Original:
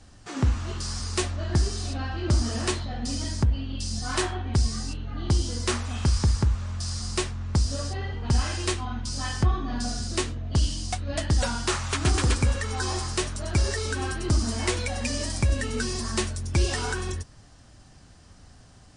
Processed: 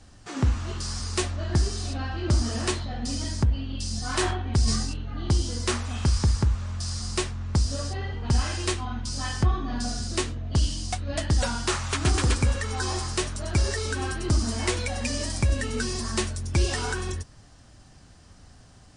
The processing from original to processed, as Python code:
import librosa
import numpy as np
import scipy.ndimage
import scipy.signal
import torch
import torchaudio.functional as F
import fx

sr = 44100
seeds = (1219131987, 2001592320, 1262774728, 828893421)

y = fx.sustainer(x, sr, db_per_s=38.0, at=(4.03, 5.02))